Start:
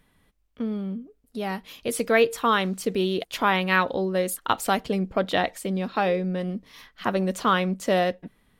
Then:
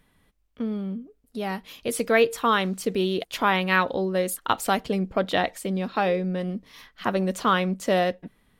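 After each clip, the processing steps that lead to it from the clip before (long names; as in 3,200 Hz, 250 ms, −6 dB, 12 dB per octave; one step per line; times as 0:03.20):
no processing that can be heard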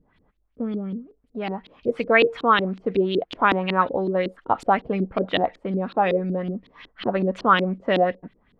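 auto-filter low-pass saw up 5.4 Hz 280–4,100 Hz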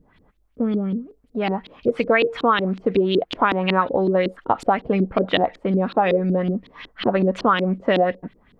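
downward compressor 6 to 1, threshold −20 dBFS, peak gain reduction 9 dB
level +6 dB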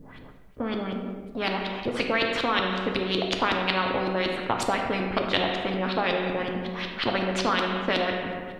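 on a send at −4 dB: convolution reverb RT60 1.1 s, pre-delay 4 ms
on the sum: every bin compressed towards the loudest bin 2 to 1
level −2.5 dB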